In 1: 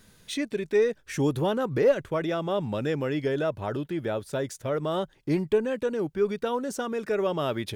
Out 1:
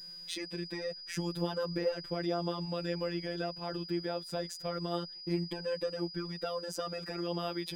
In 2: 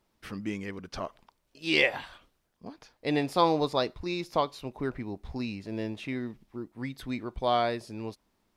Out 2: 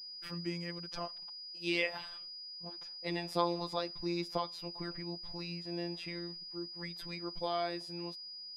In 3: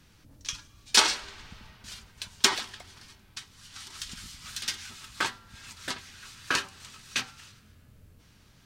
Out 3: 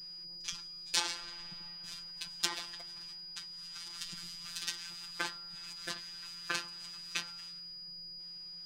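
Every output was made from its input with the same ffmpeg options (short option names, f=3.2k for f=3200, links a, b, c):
-af "acompressor=threshold=-28dB:ratio=2,afftfilt=real='hypot(re,im)*cos(PI*b)':imag='0':win_size=1024:overlap=0.75,aeval=exprs='val(0)+0.00708*sin(2*PI*4900*n/s)':c=same,volume=-1.5dB"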